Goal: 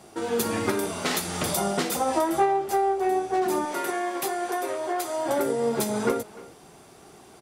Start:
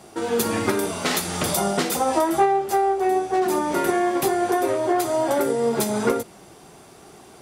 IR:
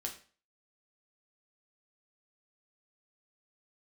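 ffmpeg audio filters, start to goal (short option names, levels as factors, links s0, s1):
-filter_complex "[0:a]asettb=1/sr,asplit=3[s0][s1][s2];[s0]atrim=end=3.654[s3];[s1]atrim=start=3.65:end=5.26,asetpts=PTS-STARTPTS,afade=t=in:d=0.004:c=qsin,afade=t=out:st=1.606:d=0.004:c=qsin,highpass=f=650:p=1[s4];[s2]atrim=start=5.256[s5];[s3][s4]acrossfade=d=0.004:c1=hsin:c2=qsin[s6];[s6][s5]acrossfade=d=0.004:c1=qsin:c2=hsin,asplit=2[s7][s8];[s8]adelay=300,highpass=300,lowpass=3400,asoftclip=type=hard:threshold=0.141,volume=0.126[s9];[s7][s9]amix=inputs=2:normalize=0,volume=0.668"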